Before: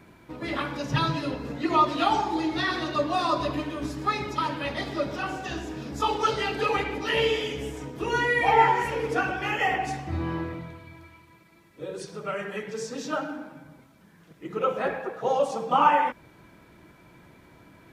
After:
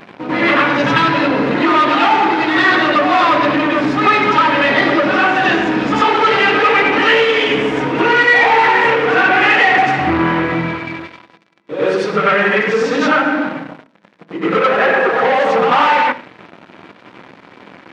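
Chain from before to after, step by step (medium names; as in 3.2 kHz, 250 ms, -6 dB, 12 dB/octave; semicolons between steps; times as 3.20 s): de-hum 319.7 Hz, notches 35; in parallel at +2 dB: peak limiter -17.5 dBFS, peak gain reduction 10.5 dB; on the sum: waveshaping leveller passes 5; band-pass 190–3000 Hz; compression, threshold -11 dBFS, peak gain reduction 6.5 dB; reverse echo 95 ms -6 dB; on a send at -15 dB: reverberation RT60 0.40 s, pre-delay 3 ms; on the sum: dynamic bell 1.9 kHz, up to +7 dB, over -27 dBFS, Q 0.76; trim -3 dB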